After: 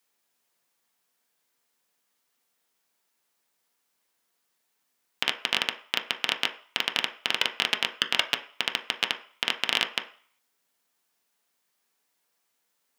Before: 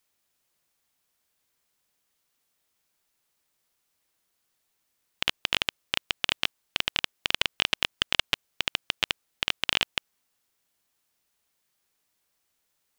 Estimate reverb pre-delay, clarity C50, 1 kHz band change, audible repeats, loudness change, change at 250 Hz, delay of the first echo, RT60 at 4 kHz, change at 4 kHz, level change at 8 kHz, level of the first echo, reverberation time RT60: 3 ms, 12.5 dB, +2.5 dB, no echo, +0.5 dB, +0.5 dB, no echo, 0.50 s, +0.5 dB, 0.0 dB, no echo, 0.50 s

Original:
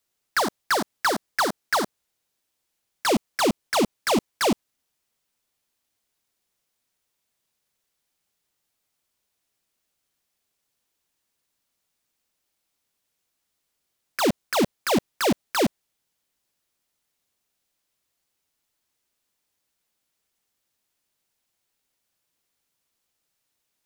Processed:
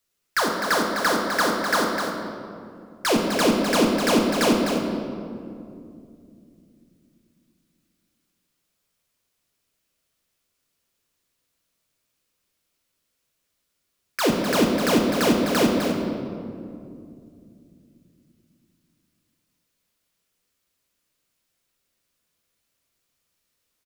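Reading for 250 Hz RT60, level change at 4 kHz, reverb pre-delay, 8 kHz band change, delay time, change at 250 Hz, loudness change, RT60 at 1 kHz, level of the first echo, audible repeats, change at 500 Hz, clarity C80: 3.9 s, +2.5 dB, 6 ms, +2.0 dB, 254 ms, +5.5 dB, +2.5 dB, 2.2 s, -7.0 dB, 1, +4.0 dB, 2.0 dB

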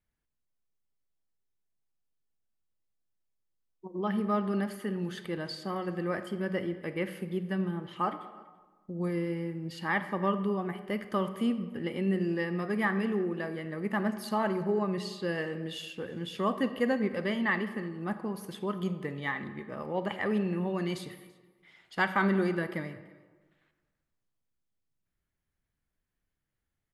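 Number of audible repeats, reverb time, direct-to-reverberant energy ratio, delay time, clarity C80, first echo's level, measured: 1, 1.3 s, 10.5 dB, 334 ms, 12.5 dB, -24.0 dB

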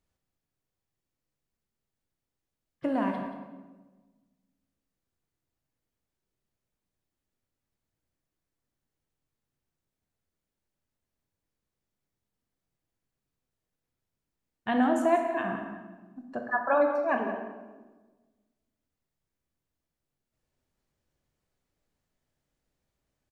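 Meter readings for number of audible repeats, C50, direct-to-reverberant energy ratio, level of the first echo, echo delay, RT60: 1, 5.0 dB, 3.0 dB, -12.5 dB, 180 ms, 1.3 s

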